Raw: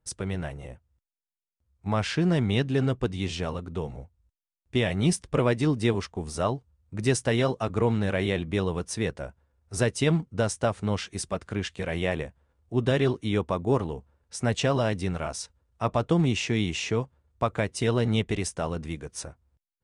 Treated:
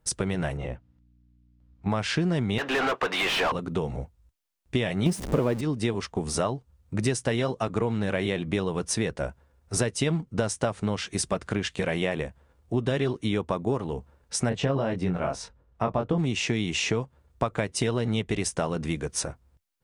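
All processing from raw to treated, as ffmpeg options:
ffmpeg -i in.wav -filter_complex "[0:a]asettb=1/sr,asplit=3[link_01][link_02][link_03];[link_01]atrim=end=0.574[link_04];[link_02]atrim=start=0.57:end=1.9,asetpts=PTS-STARTPTS,afade=type=in:duration=0.004:curve=qsin,afade=type=out:start_time=1.326:duration=0.004:curve=qsin,lowpass=4000,aeval=exprs='val(0)+0.000447*(sin(2*PI*60*n/s)+sin(2*PI*2*60*n/s)/2+sin(2*PI*3*60*n/s)/3+sin(2*PI*4*60*n/s)/4+sin(2*PI*5*60*n/s)/5)':channel_layout=same[link_05];[link_03]atrim=start=1.896[link_06];[link_04][link_05]acrossfade=duration=0.004:curve1=hsin:curve2=qsin[link_07];[link_07][link_06]acrossfade=duration=0.004:curve1=qsin:curve2=hsin,asettb=1/sr,asplit=3[link_08][link_09][link_10];[link_08]atrim=end=2.584[link_11];[link_09]atrim=start=2.58:end=3.52,asetpts=PTS-STARTPTS,afade=type=in:duration=0.004:curve=qsin,afade=type=out:start_time=0.936:duration=0.004:curve=qsin,highpass=810,aemphasis=mode=reproduction:type=50fm,asplit=2[link_12][link_13];[link_13]highpass=frequency=720:poles=1,volume=34dB,asoftclip=type=tanh:threshold=-17.5dB[link_14];[link_12][link_14]amix=inputs=2:normalize=0,lowpass=frequency=1400:poles=1,volume=-6dB[link_15];[link_10]atrim=start=3.516[link_16];[link_11][link_15]acrossfade=duration=0.004:curve1=hsin:curve2=qsin[link_17];[link_17][link_16]acrossfade=duration=0.004:curve1=qsin:curve2=hsin,asettb=1/sr,asplit=3[link_18][link_19][link_20];[link_18]atrim=end=5.064[link_21];[link_19]atrim=start=5.06:end=5.61,asetpts=PTS-STARTPTS,afade=type=in:duration=0.004:curve=qsin,afade=type=out:start_time=0.546:duration=0.004:curve=qsin,aeval=exprs='val(0)+0.5*0.0398*sgn(val(0))':channel_layout=same,equalizer=frequency=290:width=0.34:gain=9[link_22];[link_20]atrim=start=5.606[link_23];[link_21][link_22]acrossfade=duration=0.004:curve1=hsin:curve2=qsin[link_24];[link_24][link_23]acrossfade=duration=0.004:curve1=qsin:curve2=hsin,asettb=1/sr,asplit=3[link_25][link_26][link_27];[link_25]atrim=end=14.494[link_28];[link_26]atrim=start=14.49:end=16.18,asetpts=PTS-STARTPTS,afade=type=in:duration=0.004:curve=qsin,afade=type=out:start_time=1.686:duration=0.004:curve=qsin,lowpass=frequency=1400:poles=1,asplit=2[link_29][link_30];[link_30]adelay=22,volume=-4dB[link_31];[link_29][link_31]amix=inputs=2:normalize=0,atrim=end_sample=74529[link_32];[link_27]atrim=start=16.176[link_33];[link_28][link_32]acrossfade=duration=0.004:curve1=hsin:curve2=qsin[link_34];[link_34][link_33]acrossfade=duration=0.004:curve1=qsin:curve2=hsin,equalizer=frequency=86:width=6.7:gain=-14.5,acompressor=threshold=-32dB:ratio=5,volume=8.5dB" out.wav

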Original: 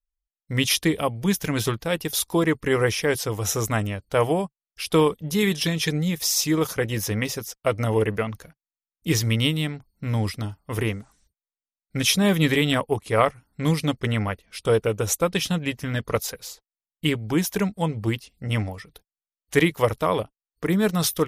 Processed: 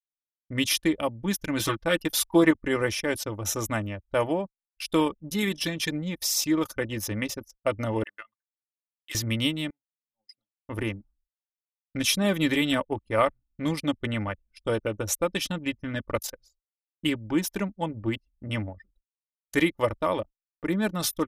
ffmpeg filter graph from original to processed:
ffmpeg -i in.wav -filter_complex "[0:a]asettb=1/sr,asplit=3[link_01][link_02][link_03];[link_01]atrim=end=1.594[link_04];[link_02]atrim=start=1.59:end=2.51,asetpts=PTS-STARTPTS,afade=type=in:duration=0.004:curve=qsin,afade=type=out:start_time=0.916:duration=0.004:curve=qsin,equalizer=frequency=1600:width=0.62:gain=5,aecho=1:1:6.2:0.76,atrim=end_sample=40572[link_05];[link_03]atrim=start=2.506[link_06];[link_04][link_05]acrossfade=duration=0.004:curve1=hsin:curve2=qsin[link_07];[link_07][link_06]acrossfade=duration=0.004:curve1=qsin:curve2=hsin,asettb=1/sr,asplit=3[link_08][link_09][link_10];[link_08]atrim=end=8.034[link_11];[link_09]atrim=start=8.03:end=9.15,asetpts=PTS-STARTPTS,afade=type=in:duration=0.004:curve=qsin,afade=type=out:start_time=1.116:duration=0.004:curve=qsin,highpass=1500,bandreject=frequency=2300:width=8.3[link_12];[link_10]atrim=start=9.146[link_13];[link_11][link_12]acrossfade=duration=0.004:curve1=hsin:curve2=qsin[link_14];[link_14][link_13]acrossfade=duration=0.004:curve1=qsin:curve2=hsin,asettb=1/sr,asplit=3[link_15][link_16][link_17];[link_15]atrim=end=9.704[link_18];[link_16]atrim=start=9.7:end=10.65,asetpts=PTS-STARTPTS,afade=type=in:duration=0.004:curve=qsin,afade=type=out:start_time=0.946:duration=0.004:curve=qsin,highpass=920,equalizer=frequency=1400:width=0.71:gain=-10[link_19];[link_17]atrim=start=10.646[link_20];[link_18][link_19]acrossfade=duration=0.004:curve1=hsin:curve2=qsin[link_21];[link_21][link_20]acrossfade=duration=0.004:curve1=qsin:curve2=hsin,anlmdn=39.8,agate=range=-33dB:threshold=-51dB:ratio=3:detection=peak,aecho=1:1:3.4:0.52,volume=-4.5dB" out.wav

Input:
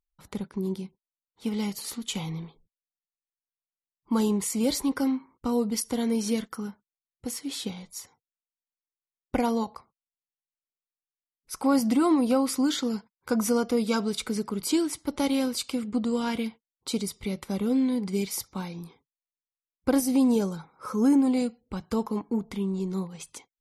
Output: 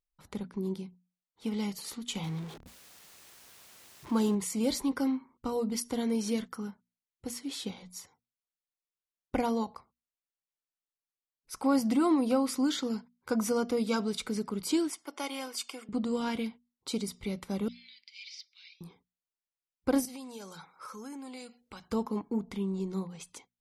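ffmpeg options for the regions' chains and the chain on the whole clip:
ffmpeg -i in.wav -filter_complex "[0:a]asettb=1/sr,asplit=3[link_01][link_02][link_03];[link_01]atrim=end=2.234[link_04];[link_02]atrim=start=2.23:end=4.35,asetpts=PTS-STARTPTS,afade=type=in:duration=0.004:curve=qsin,afade=type=out:start_time=2.116:duration=0.004:curve=qsin,aeval=exprs='val(0)+0.5*0.0133*sgn(val(0))':channel_layout=same,highpass=47[link_05];[link_03]atrim=start=4.346[link_06];[link_04][link_05]acrossfade=duration=0.004:curve1=hsin:curve2=qsin[link_07];[link_07][link_06]acrossfade=duration=0.004:curve1=qsin:curve2=hsin,asettb=1/sr,asplit=3[link_08][link_09][link_10];[link_08]atrim=end=14.904[link_11];[link_09]atrim=start=14.9:end=15.89,asetpts=PTS-STARTPTS,afade=type=in:duration=0.004:curve=qsin,afade=type=out:start_time=0.986:duration=0.004:curve=qsin,highpass=580,bandreject=frequency=4000:width=5.3,aecho=1:1:2.8:0.36,atrim=end_sample=43659[link_12];[link_10]atrim=start=15.886[link_13];[link_11][link_12]acrossfade=duration=0.004:curve1=hsin:curve2=qsin[link_14];[link_14][link_13]acrossfade=duration=0.004:curve1=qsin:curve2=hsin,asettb=1/sr,asplit=3[link_15][link_16][link_17];[link_15]atrim=end=17.684[link_18];[link_16]atrim=start=17.68:end=18.81,asetpts=PTS-STARTPTS,afade=type=in:duration=0.004:curve=qsin,afade=type=out:start_time=1.126:duration=0.004:curve=qsin,asuperpass=centerf=3400:order=8:qfactor=1.1,aeval=exprs='0.0316*(abs(mod(val(0)/0.0316+3,4)-2)-1)':channel_layout=same[link_19];[link_17]atrim=start=18.806[link_20];[link_18][link_19]acrossfade=duration=0.004:curve1=hsin:curve2=qsin[link_21];[link_21][link_20]acrossfade=duration=0.004:curve1=qsin:curve2=hsin,asettb=1/sr,asplit=3[link_22][link_23][link_24];[link_22]atrim=end=20.054[link_25];[link_23]atrim=start=20.05:end=21.88,asetpts=PTS-STARTPTS,afade=type=in:duration=0.004:curve=qsin,afade=type=out:start_time=1.826:duration=0.004:curve=qsin,tiltshelf=frequency=650:gain=-9,acompressor=threshold=-39dB:ratio=4:attack=3.2:release=140:knee=1:detection=peak[link_26];[link_24]atrim=start=21.876[link_27];[link_25][link_26]acrossfade=duration=0.004:curve1=hsin:curve2=qsin[link_28];[link_28][link_27]acrossfade=duration=0.004:curve1=qsin:curve2=hsin,highshelf=frequency=10000:gain=-5.5,bandreject=frequency=60:width_type=h:width=6,bandreject=frequency=120:width_type=h:width=6,bandreject=frequency=180:width_type=h:width=6,bandreject=frequency=240:width_type=h:width=6,volume=-3.5dB" out.wav

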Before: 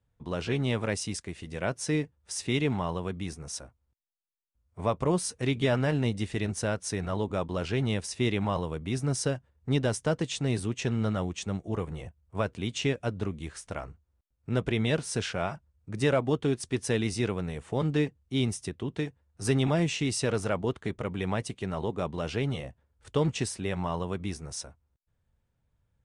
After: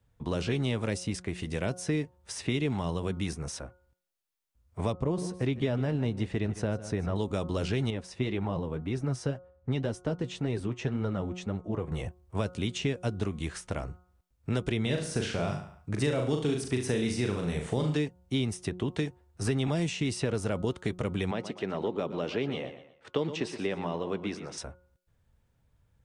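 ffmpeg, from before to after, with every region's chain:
ffmpeg -i in.wav -filter_complex "[0:a]asettb=1/sr,asplit=3[link_01][link_02][link_03];[link_01]atrim=end=4.924[link_04];[link_02]atrim=start=4.92:end=7.16,asetpts=PTS-STARTPTS,afade=type=in:duration=0.004:curve=qsin,afade=type=out:start_time=2.236:duration=0.004:curve=qsin,lowpass=frequency=1100:poles=1,aecho=1:1:153:0.141,atrim=end_sample=98784[link_05];[link_03]atrim=start=7.156[link_06];[link_04][link_05]acrossfade=duration=0.004:curve1=hsin:curve2=qsin[link_07];[link_07][link_06]acrossfade=duration=0.004:curve1=qsin:curve2=hsin,asettb=1/sr,asplit=3[link_08][link_09][link_10];[link_08]atrim=end=7.904[link_11];[link_09]atrim=start=7.9:end=11.92,asetpts=PTS-STARTPTS,afade=type=in:duration=0.004:curve=qsin,afade=type=out:start_time=4.016:duration=0.004:curve=qsin,lowpass=frequency=1500:poles=1,flanger=delay=2.1:depth=6.3:regen=47:speed=1.9:shape=sinusoidal[link_12];[link_10]atrim=start=11.916[link_13];[link_11][link_12]acrossfade=duration=0.004:curve1=hsin:curve2=qsin[link_14];[link_14][link_13]acrossfade=duration=0.004:curve1=qsin:curve2=hsin,asettb=1/sr,asplit=3[link_15][link_16][link_17];[link_15]atrim=end=14.824[link_18];[link_16]atrim=start=14.82:end=17.97,asetpts=PTS-STARTPTS,afade=type=in:duration=0.004:curve=qsin,afade=type=out:start_time=3.146:duration=0.004:curve=qsin,asplit=2[link_19][link_20];[link_20]adelay=40,volume=-4.5dB[link_21];[link_19][link_21]amix=inputs=2:normalize=0,atrim=end_sample=138915,aecho=1:1:71|142|213|284:0.266|0.0984|0.0364|0.0135,atrim=end_sample=138915[link_22];[link_17]atrim=start=17.966[link_23];[link_18][link_22]acrossfade=duration=0.004:curve1=hsin:curve2=qsin[link_24];[link_24][link_23]acrossfade=duration=0.004:curve1=qsin:curve2=hsin,asettb=1/sr,asplit=3[link_25][link_26][link_27];[link_25]atrim=end=21.314[link_28];[link_26]atrim=start=21.31:end=24.58,asetpts=PTS-STARTPTS,afade=type=in:duration=0.004:curve=qsin,afade=type=out:start_time=3.266:duration=0.004:curve=qsin,highpass=260,lowpass=3400,aecho=1:1:120|240|360:0.211|0.0719|0.0244,atrim=end_sample=144207[link_29];[link_27]atrim=start=24.576[link_30];[link_28][link_29]acrossfade=duration=0.004:curve1=hsin:curve2=qsin[link_31];[link_31][link_30]acrossfade=duration=0.004:curve1=qsin:curve2=hsin,bandreject=frequency=180.8:width_type=h:width=4,bandreject=frequency=361.6:width_type=h:width=4,bandreject=frequency=542.4:width_type=h:width=4,bandreject=frequency=723.2:width_type=h:width=4,bandreject=frequency=904:width_type=h:width=4,bandreject=frequency=1084.8:width_type=h:width=4,bandreject=frequency=1265.6:width_type=h:width=4,bandreject=frequency=1446.4:width_type=h:width=4,acrossover=split=500|3300[link_32][link_33][link_34];[link_32]acompressor=threshold=-34dB:ratio=4[link_35];[link_33]acompressor=threshold=-45dB:ratio=4[link_36];[link_34]acompressor=threshold=-48dB:ratio=4[link_37];[link_35][link_36][link_37]amix=inputs=3:normalize=0,volume=6dB" out.wav

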